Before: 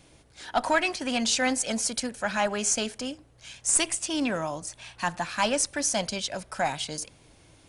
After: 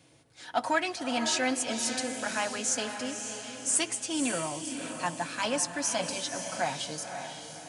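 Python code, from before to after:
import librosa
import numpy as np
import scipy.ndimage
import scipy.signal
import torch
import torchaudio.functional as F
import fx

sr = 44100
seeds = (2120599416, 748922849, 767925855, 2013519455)

p1 = scipy.signal.sosfilt(scipy.signal.butter(4, 100.0, 'highpass', fs=sr, output='sos'), x)
p2 = fx.notch_comb(p1, sr, f0_hz=200.0)
p3 = p2 + fx.echo_diffused(p2, sr, ms=549, feedback_pct=44, wet_db=-7.0, dry=0)
y = F.gain(torch.from_numpy(p3), -2.5).numpy()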